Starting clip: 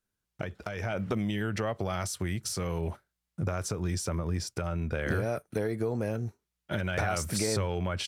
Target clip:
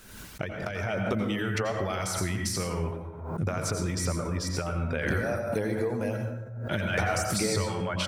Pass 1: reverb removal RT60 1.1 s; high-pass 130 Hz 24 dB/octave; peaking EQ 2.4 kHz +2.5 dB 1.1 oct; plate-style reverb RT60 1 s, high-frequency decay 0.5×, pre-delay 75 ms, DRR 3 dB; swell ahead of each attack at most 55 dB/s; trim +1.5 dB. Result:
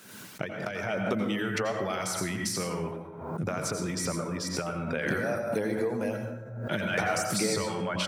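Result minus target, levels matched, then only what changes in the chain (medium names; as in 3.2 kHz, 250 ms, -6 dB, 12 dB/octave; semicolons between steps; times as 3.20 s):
125 Hz band -4.5 dB
remove: high-pass 130 Hz 24 dB/octave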